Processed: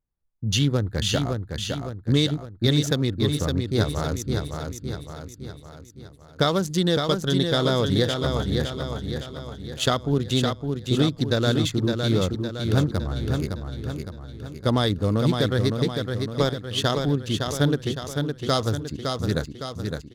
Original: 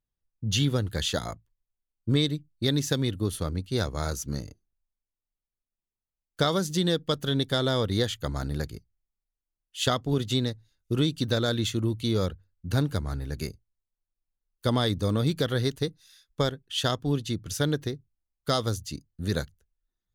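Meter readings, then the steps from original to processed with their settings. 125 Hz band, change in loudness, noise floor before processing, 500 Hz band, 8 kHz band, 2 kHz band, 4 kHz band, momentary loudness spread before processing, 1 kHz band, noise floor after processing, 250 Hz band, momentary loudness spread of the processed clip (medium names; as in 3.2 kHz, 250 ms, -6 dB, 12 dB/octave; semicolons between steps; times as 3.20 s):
+5.0 dB, +4.0 dB, under -85 dBFS, +5.0 dB, +2.5 dB, +4.0 dB, +3.5 dB, 11 LU, +4.5 dB, -47 dBFS, +5.0 dB, 11 LU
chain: local Wiener filter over 15 samples; on a send: feedback delay 561 ms, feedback 51%, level -5 dB; on the sum: trim +3.5 dB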